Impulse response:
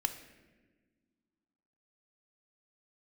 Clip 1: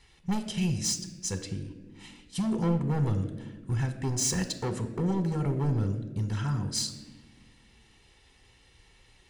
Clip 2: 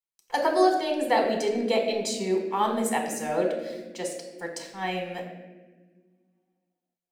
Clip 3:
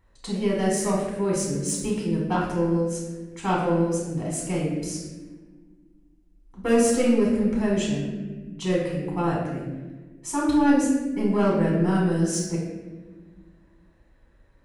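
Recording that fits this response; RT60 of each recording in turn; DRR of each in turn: 1; 1.4 s, 1.4 s, 1.4 s; 7.5 dB, 1.5 dB, -5.5 dB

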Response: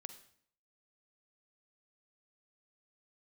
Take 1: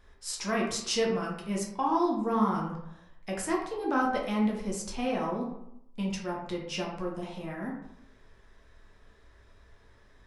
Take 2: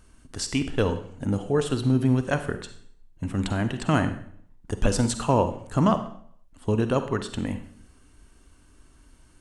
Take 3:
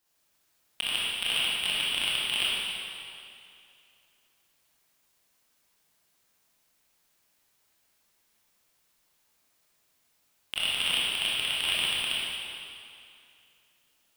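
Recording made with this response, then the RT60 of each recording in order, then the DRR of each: 2; 0.80 s, 0.60 s, 2.6 s; -2.0 dB, 9.0 dB, -7.5 dB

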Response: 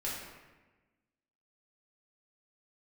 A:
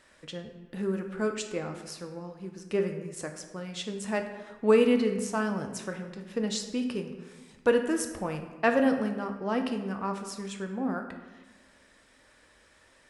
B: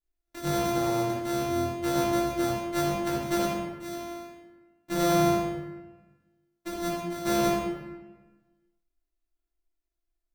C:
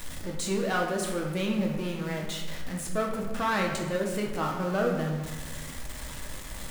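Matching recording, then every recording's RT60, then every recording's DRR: B; 1.2 s, 1.2 s, 1.2 s; 4.5 dB, -7.0 dB, 0.0 dB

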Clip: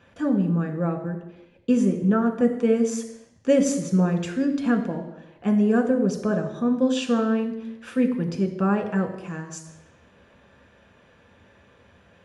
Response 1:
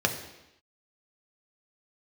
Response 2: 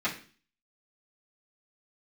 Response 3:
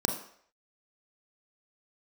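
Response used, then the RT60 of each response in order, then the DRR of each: 1; 0.90 s, 0.40 s, 0.60 s; 3.5 dB, -12.5 dB, 3.0 dB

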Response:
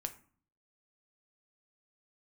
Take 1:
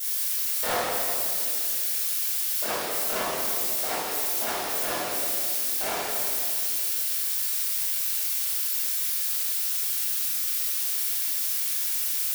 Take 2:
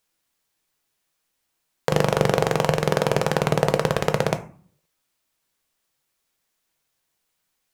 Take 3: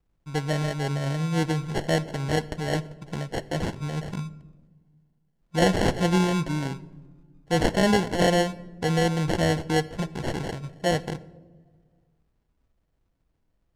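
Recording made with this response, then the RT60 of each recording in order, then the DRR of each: 2; 2.4 s, 0.45 s, no single decay rate; -13.5 dB, 7.5 dB, 14.0 dB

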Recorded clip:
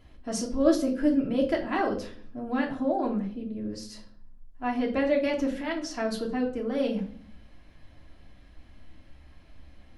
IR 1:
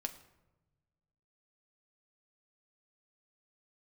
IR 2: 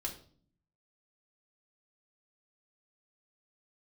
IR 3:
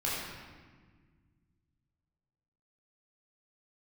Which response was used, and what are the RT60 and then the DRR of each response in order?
2; no single decay rate, 0.50 s, 1.6 s; 4.5 dB, -1.0 dB, -7.5 dB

